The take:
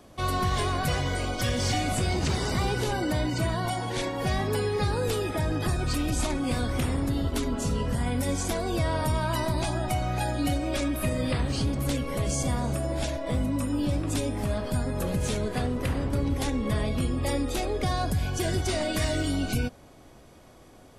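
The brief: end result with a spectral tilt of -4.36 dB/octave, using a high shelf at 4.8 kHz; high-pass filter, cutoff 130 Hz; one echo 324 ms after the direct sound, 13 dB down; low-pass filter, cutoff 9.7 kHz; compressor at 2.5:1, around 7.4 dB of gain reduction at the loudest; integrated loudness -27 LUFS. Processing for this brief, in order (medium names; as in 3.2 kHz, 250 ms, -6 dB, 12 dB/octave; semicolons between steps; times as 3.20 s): high-pass 130 Hz; low-pass 9.7 kHz; treble shelf 4.8 kHz +4.5 dB; compression 2.5:1, threshold -36 dBFS; delay 324 ms -13 dB; trim +9 dB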